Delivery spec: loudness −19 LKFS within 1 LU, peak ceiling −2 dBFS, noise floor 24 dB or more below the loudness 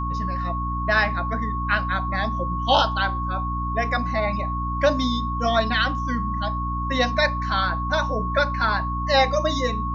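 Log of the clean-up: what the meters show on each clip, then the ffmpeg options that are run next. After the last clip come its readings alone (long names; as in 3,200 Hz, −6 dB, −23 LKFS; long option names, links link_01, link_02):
mains hum 60 Hz; hum harmonics up to 300 Hz; level of the hum −25 dBFS; interfering tone 1,100 Hz; level of the tone −27 dBFS; integrated loudness −23.0 LKFS; sample peak −4.5 dBFS; target loudness −19.0 LKFS
→ -af "bandreject=frequency=60:width_type=h:width=6,bandreject=frequency=120:width_type=h:width=6,bandreject=frequency=180:width_type=h:width=6,bandreject=frequency=240:width_type=h:width=6,bandreject=frequency=300:width_type=h:width=6"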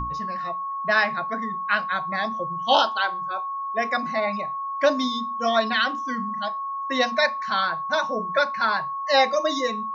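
mains hum none found; interfering tone 1,100 Hz; level of the tone −27 dBFS
→ -af "bandreject=frequency=1100:width=30"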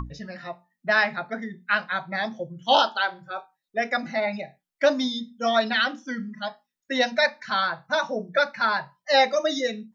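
interfering tone none found; integrated loudness −24.5 LKFS; sample peak −5.5 dBFS; target loudness −19.0 LKFS
→ -af "volume=5.5dB,alimiter=limit=-2dB:level=0:latency=1"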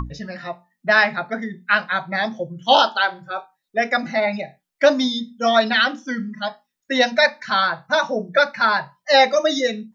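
integrated loudness −19.5 LKFS; sample peak −2.0 dBFS; background noise floor −78 dBFS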